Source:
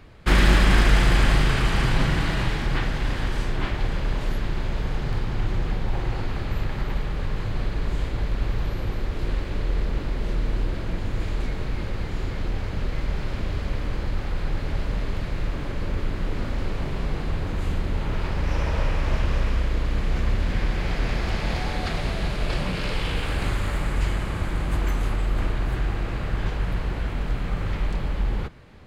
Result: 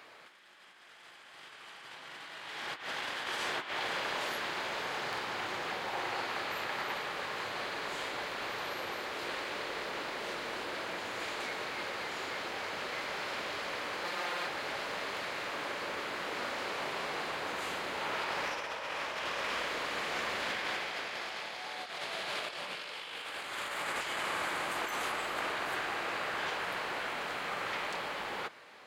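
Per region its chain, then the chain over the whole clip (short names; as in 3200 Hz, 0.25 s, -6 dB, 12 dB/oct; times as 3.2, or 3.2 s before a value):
14.04–14.47 HPF 160 Hz 6 dB/oct + comb 5.7 ms, depth 87%
whole clip: HPF 670 Hz 12 dB/oct; dynamic EQ 3300 Hz, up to +3 dB, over -46 dBFS, Q 4.4; negative-ratio compressor -37 dBFS, ratio -0.5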